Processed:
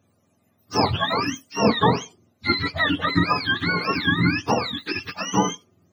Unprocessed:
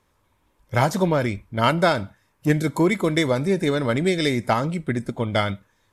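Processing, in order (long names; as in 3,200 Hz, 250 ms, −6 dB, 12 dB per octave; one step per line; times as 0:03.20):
frequency axis turned over on the octave scale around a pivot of 790 Hz
hollow resonant body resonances 230/850/1,200/2,400 Hz, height 9 dB, ringing for 90 ms
level +1 dB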